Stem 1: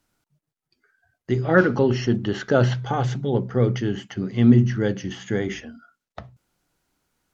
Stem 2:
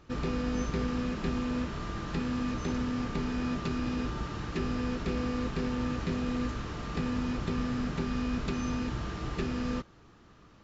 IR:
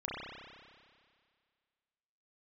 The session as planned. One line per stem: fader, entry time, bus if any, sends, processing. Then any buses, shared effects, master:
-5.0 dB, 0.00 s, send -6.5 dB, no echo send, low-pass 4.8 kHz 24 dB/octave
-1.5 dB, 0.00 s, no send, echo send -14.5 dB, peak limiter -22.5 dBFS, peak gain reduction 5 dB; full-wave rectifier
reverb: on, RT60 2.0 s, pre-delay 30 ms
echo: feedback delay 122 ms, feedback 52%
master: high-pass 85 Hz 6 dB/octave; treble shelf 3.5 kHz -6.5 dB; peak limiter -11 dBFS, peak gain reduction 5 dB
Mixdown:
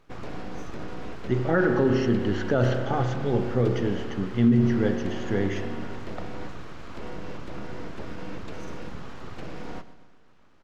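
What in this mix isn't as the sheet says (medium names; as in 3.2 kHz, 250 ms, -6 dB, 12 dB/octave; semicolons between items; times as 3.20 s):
stem 1: missing low-pass 4.8 kHz 24 dB/octave; master: missing high-pass 85 Hz 6 dB/octave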